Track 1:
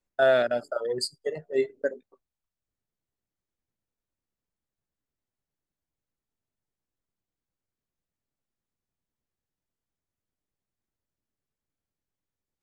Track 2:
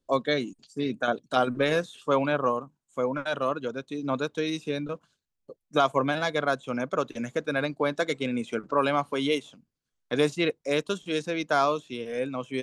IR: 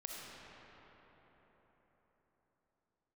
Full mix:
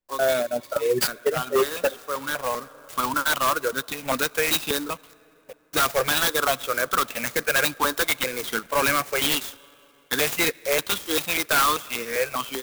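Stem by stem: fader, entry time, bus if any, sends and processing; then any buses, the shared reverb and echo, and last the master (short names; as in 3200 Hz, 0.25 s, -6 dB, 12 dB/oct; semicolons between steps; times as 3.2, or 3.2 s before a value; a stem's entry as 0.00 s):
-2.0 dB, 0.00 s, no send, reverb removal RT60 1.8 s
0.0 dB, 0.00 s, send -23 dB, tilt +4.5 dB/oct; companded quantiser 4-bit; step phaser 5.1 Hz 650–3100 Hz; auto duck -14 dB, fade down 0.50 s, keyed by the first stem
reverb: on, RT60 4.7 s, pre-delay 20 ms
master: AGC gain up to 11 dB; wavefolder -13.5 dBFS; clock jitter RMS 0.039 ms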